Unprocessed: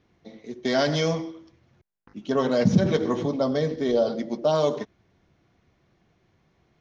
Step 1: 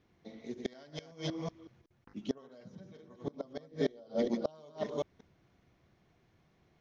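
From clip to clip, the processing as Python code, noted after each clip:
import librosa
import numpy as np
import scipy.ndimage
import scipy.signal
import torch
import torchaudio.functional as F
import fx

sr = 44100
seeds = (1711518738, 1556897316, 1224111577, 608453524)

y = fx.reverse_delay(x, sr, ms=186, wet_db=-5.0)
y = fx.gate_flip(y, sr, shuts_db=-14.0, range_db=-28)
y = y * librosa.db_to_amplitude(-5.0)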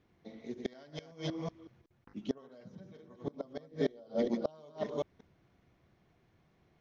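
y = fx.high_shelf(x, sr, hz=5100.0, db=-6.0)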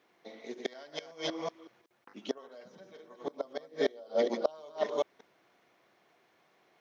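y = scipy.signal.sosfilt(scipy.signal.butter(2, 490.0, 'highpass', fs=sr, output='sos'), x)
y = y * librosa.db_to_amplitude(7.5)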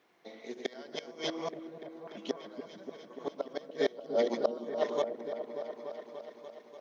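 y = fx.echo_opening(x, sr, ms=292, hz=400, octaves=1, feedback_pct=70, wet_db=-6)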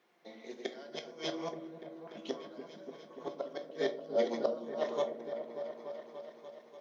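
y = scipy.signal.sosfilt(scipy.signal.butter(2, 120.0, 'highpass', fs=sr, output='sos'), x)
y = fx.room_shoebox(y, sr, seeds[0], volume_m3=230.0, walls='furnished', distance_m=0.9)
y = y * librosa.db_to_amplitude(-3.5)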